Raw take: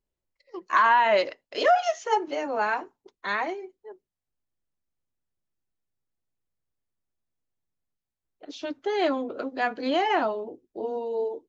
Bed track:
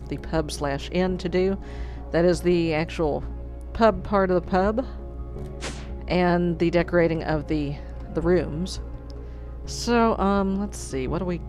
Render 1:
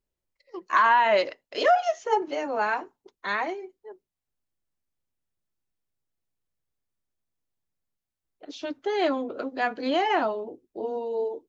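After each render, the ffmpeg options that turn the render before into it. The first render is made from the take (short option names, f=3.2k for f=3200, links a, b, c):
-filter_complex "[0:a]asettb=1/sr,asplit=3[a][b][c];[a]atrim=end=1.754[d];[b]atrim=start=1.75:end=2.22,asetpts=PTS-STARTPTS,afade=t=in:d=0.004:c=qsin,afade=t=out:st=0.466:d=0.004:c=qsin,tiltshelf=f=740:g=4.5[e];[c]atrim=start=2.216[f];[d][e]acrossfade=d=0.004:c1=hsin:c2=qsin[g];[g][f]acrossfade=d=0.004:c1=qsin:c2=hsin"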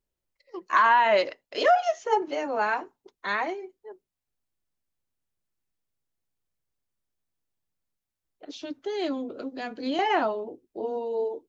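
-filter_complex "[0:a]asettb=1/sr,asplit=3[a][b][c];[a]atrim=end=8.574[d];[b]atrim=start=8.57:end=9.99,asetpts=PTS-STARTPTS,afade=t=in:d=0.004:c=qsin,afade=t=out:st=1.416:d=0.004:c=qsin,acrossover=split=430|3000[e][f][g];[f]acompressor=threshold=-58dB:ratio=1.5:attack=3.2:release=140:knee=2.83:detection=peak[h];[e][h][g]amix=inputs=3:normalize=0[i];[c]atrim=start=9.986[j];[d][i]acrossfade=d=0.004:c1=hsin:c2=qsin[k];[k][j]acrossfade=d=0.004:c1=qsin:c2=hsin"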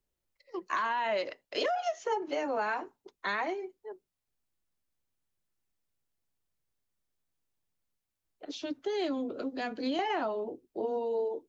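-filter_complex "[0:a]acrossover=split=220|540|2800[a][b][c][d];[c]alimiter=limit=-20dB:level=0:latency=1[e];[a][b][e][d]amix=inputs=4:normalize=0,acompressor=threshold=-28dB:ratio=6"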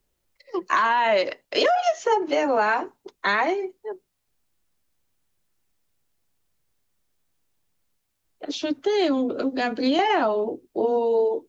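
-af "volume=10.5dB"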